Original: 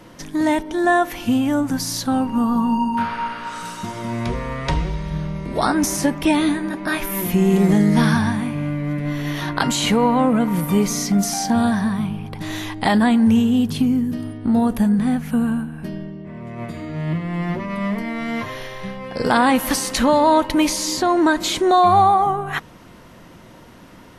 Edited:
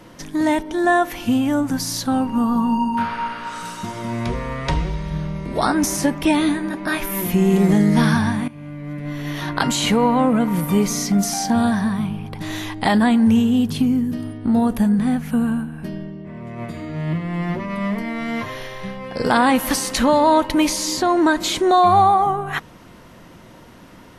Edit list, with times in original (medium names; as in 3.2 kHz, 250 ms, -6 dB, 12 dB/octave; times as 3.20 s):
8.48–9.60 s: fade in, from -16 dB